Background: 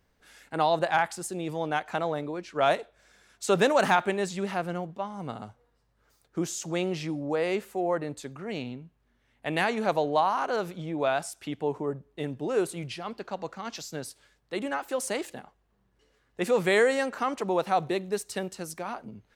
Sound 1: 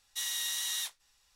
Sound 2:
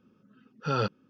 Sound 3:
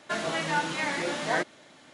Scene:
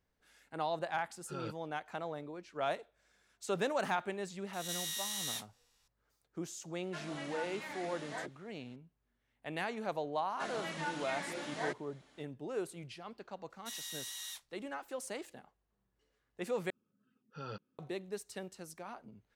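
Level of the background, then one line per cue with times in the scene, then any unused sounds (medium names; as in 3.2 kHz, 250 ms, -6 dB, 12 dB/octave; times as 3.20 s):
background -11.5 dB
0.64 s: add 2 -16 dB
4.53 s: add 1 -6.5 dB + reverse spectral sustain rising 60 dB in 0.67 s
6.83 s: add 3 -15.5 dB + phase dispersion lows, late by 48 ms, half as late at 370 Hz
10.30 s: add 3 -11.5 dB
13.50 s: add 1 -10 dB
16.70 s: replace with 2 -17 dB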